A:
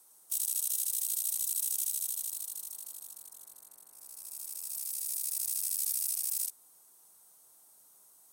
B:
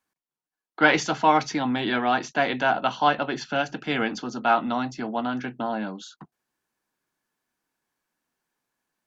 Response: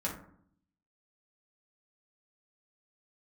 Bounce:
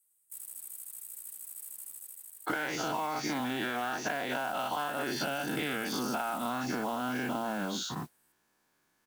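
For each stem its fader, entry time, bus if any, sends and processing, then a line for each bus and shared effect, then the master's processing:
-11.5 dB, 0.00 s, no send, Chebyshev band-stop 120–7600 Hz, order 4
+2.5 dB, 1.75 s, no send, every event in the spectrogram widened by 120 ms; compression, threshold -27 dBFS, peak gain reduction 17.5 dB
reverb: none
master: modulation noise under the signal 18 dB; compression, threshold -30 dBFS, peak gain reduction 9.5 dB

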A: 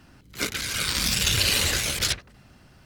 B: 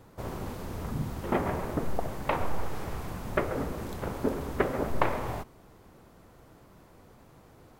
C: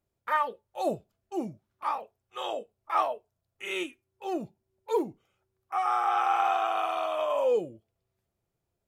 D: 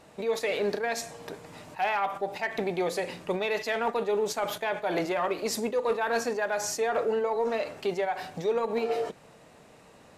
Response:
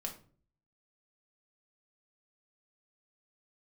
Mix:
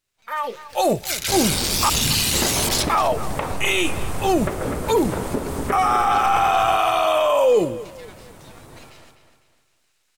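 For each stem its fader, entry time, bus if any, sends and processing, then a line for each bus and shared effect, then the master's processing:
-1.5 dB, 0.70 s, bus B, send -13.5 dB, echo send -23.5 dB, amplifier tone stack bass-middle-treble 10-0-10
-2.0 dB, 1.10 s, bus A, no send, echo send -7.5 dB, peaking EQ 8.8 kHz +10.5 dB 0.62 oct; compression, threshold -30 dBFS, peak gain reduction 11.5 dB
-6.0 dB, 0.00 s, muted 1.90–2.89 s, bus A, no send, echo send -24 dB, treble shelf 3.8 kHz +10.5 dB; level rider gain up to 11.5 dB
-16.0 dB, 0.00 s, bus B, no send, echo send -8 dB, spectral gate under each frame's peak -15 dB weak; frequency weighting A; half-wave rectifier
bus A: 0.0 dB, peak limiter -21 dBFS, peak gain reduction 12 dB
bus B: 0.0 dB, treble shelf 4.5 kHz +7 dB; peak limiter -24.5 dBFS, peak gain reduction 17.5 dB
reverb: on, RT60 0.45 s, pre-delay 4 ms
echo: feedback delay 251 ms, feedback 38%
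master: level rider gain up to 11 dB

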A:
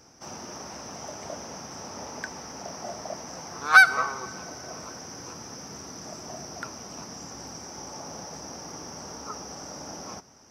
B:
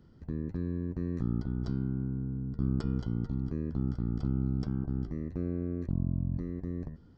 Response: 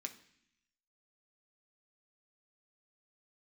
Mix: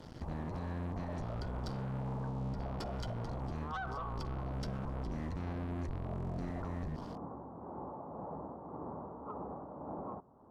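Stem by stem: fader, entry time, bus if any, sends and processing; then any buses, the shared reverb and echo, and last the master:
+0.5 dB, 0.00 s, no send, Chebyshev low-pass 1.1 kHz, order 4; saturation -22 dBFS, distortion -13 dB; tremolo 1.8 Hz, depth 45%
-7.5 dB, 0.00 s, no send, treble shelf 2.2 kHz +9.5 dB; waveshaping leveller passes 5; peak limiter -25 dBFS, peak gain reduction 5.5 dB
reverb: none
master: low-pass 11 kHz 12 dB/octave; peak limiter -33 dBFS, peak gain reduction 12 dB

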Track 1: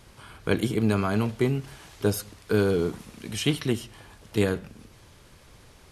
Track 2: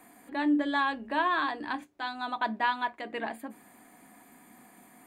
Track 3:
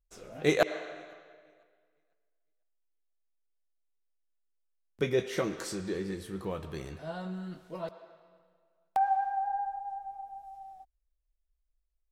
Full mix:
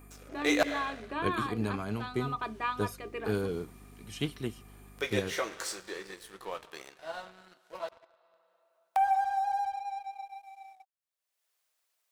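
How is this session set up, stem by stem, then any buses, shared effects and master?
-8.0 dB, 0.75 s, no send, upward expansion 1.5:1, over -34 dBFS
-10.0 dB, 0.00 s, no send, treble shelf 5.3 kHz +7.5 dB; hum 50 Hz, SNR 12 dB; small resonant body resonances 400/1200/2400 Hz, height 17 dB
-4.0 dB, 0.00 s, no send, high-pass 690 Hz 12 dB/octave; upward compressor, threshold -50 dBFS; waveshaping leveller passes 2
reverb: none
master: none

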